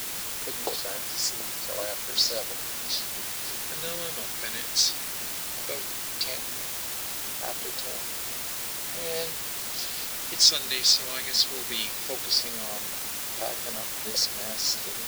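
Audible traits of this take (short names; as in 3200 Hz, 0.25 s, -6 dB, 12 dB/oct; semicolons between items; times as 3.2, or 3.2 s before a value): phasing stages 2, 0.16 Hz, lowest notch 800–2200 Hz; a quantiser's noise floor 6-bit, dither triangular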